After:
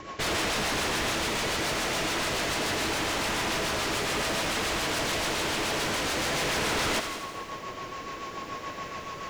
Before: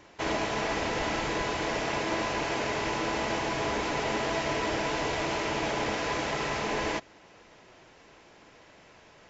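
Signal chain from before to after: vibrato 3.8 Hz 6.1 cents; in parallel at -1 dB: compression, threshold -39 dBFS, peak gain reduction 12.5 dB; on the sum: whistle 1.1 kHz -45 dBFS; rotary cabinet horn 7 Hz; wavefolder -32 dBFS; gain riding within 4 dB 2 s; on a send: thinning echo 83 ms, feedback 64%, level -8 dB; on the sum: bit-crushed delay 193 ms, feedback 35%, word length 9-bit, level -11 dB; trim +7 dB

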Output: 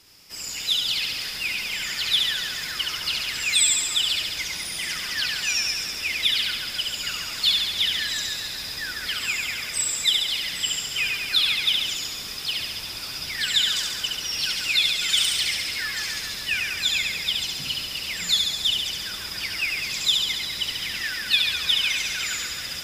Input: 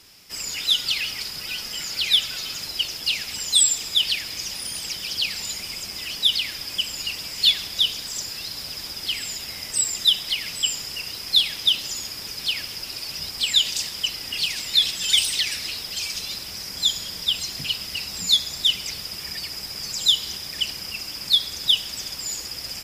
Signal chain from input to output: flutter echo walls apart 11.9 m, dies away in 1.2 s; ever faster or slower copies 442 ms, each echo -6 st, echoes 2, each echo -6 dB; trim -4 dB

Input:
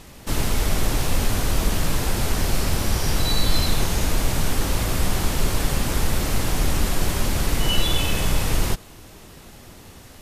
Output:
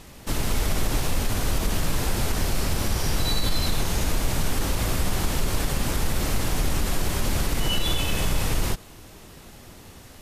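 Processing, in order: peak limiter -12 dBFS, peak gain reduction 6 dB; trim -1.5 dB

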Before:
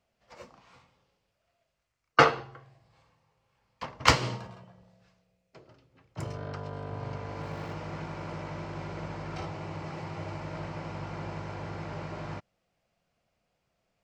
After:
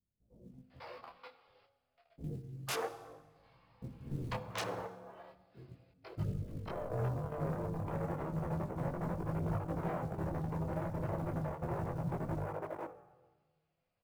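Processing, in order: resampled via 11.025 kHz; level held to a coarse grid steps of 19 dB; low-pass that closes with the level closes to 740 Hz, closed at -41 dBFS; hum notches 50/100/150/200/250/300 Hz; sine folder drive 14 dB, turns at -23 dBFS; treble shelf 2.3 kHz -2.5 dB; bands offset in time lows, highs 500 ms, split 330 Hz; on a send at -11.5 dB: reverberation RT60 1.3 s, pre-delay 3 ms; on the sum: short-mantissa float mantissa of 4-bit; detune thickener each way 11 cents; trim -4 dB

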